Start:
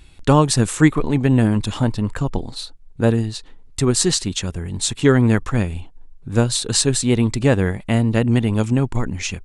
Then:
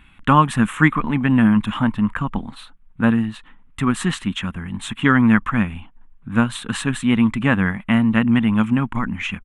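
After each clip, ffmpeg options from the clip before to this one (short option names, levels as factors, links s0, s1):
-af "firequalizer=gain_entry='entry(120,0);entry(210,12);entry(390,-6);entry(1100,14);entry(3200,7);entry(4600,-15);entry(10000,-3)':delay=0.05:min_phase=1,volume=0.501"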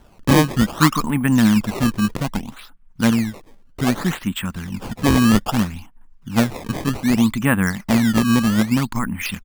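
-af "acrusher=samples=18:mix=1:aa=0.000001:lfo=1:lforange=28.8:lforate=0.63"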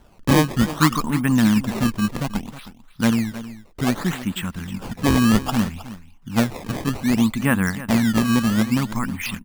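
-af "aecho=1:1:315:0.178,volume=0.794"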